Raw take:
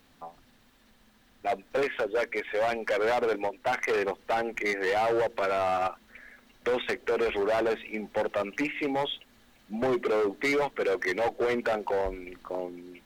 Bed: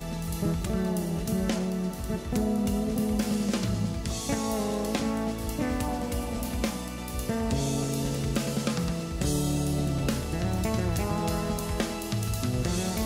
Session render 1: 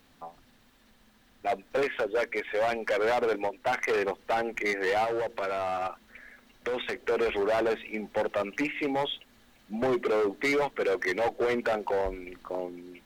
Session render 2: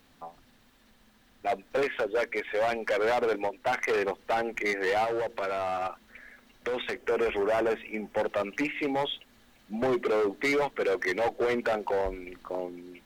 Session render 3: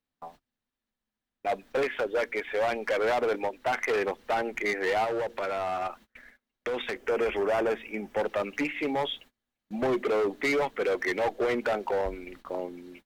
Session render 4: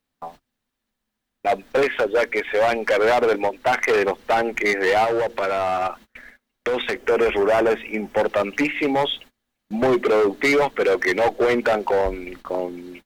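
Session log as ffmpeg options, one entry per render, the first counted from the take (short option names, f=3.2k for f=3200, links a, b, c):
-filter_complex "[0:a]asettb=1/sr,asplit=3[a][b][c];[a]atrim=end=5.044[d];[b]atrim=start=5.04:end=7.03,asetpts=PTS-STARTPTS,afade=t=in:d=0.004:c=qsin,afade=t=out:st=1.986:d=0.004:c=qsin,acompressor=threshold=-28dB:ratio=6:attack=3.2:release=140:knee=1:detection=peak[e];[c]atrim=start=7.026[f];[d][e]acrossfade=d=0.004:c1=hsin:c2=qsin[g];[g][f]acrossfade=d=0.004:c1=qsin:c2=hsin"
-filter_complex "[0:a]asettb=1/sr,asplit=3[a][b][c];[a]atrim=end=6.984[d];[b]atrim=start=6.98:end=8.19,asetpts=PTS-STARTPTS,afade=t=in:d=0.004:c=qsin,afade=t=out:st=1.206:d=0.004:c=qsin,equalizer=f=4k:t=o:w=0.35:g=-10.5[e];[c]atrim=start=8.186[f];[d][e]acrossfade=d=0.004:c1=hsin:c2=qsin[g];[g][f]acrossfade=d=0.004:c1=qsin:c2=hsin"
-af "agate=range=-28dB:threshold=-49dB:ratio=16:detection=peak"
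-af "volume=8.5dB"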